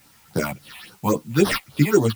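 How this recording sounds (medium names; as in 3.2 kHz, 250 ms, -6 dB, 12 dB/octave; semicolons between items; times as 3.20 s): aliases and images of a low sample rate 7.1 kHz, jitter 0%; phasing stages 6, 3.6 Hz, lowest notch 370–2300 Hz; a quantiser's noise floor 10-bit, dither triangular; a shimmering, thickened sound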